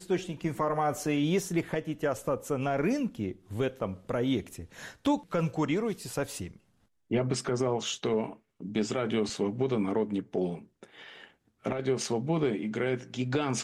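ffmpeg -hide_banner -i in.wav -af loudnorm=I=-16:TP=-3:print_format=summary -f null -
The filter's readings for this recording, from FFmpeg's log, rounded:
Input Integrated:    -31.0 LUFS
Input True Peak:     -17.7 dBTP
Input LRA:             1.9 LU
Input Threshold:     -41.5 LUFS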